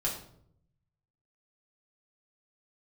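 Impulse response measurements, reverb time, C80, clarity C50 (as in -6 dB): 0.65 s, 10.0 dB, 7.0 dB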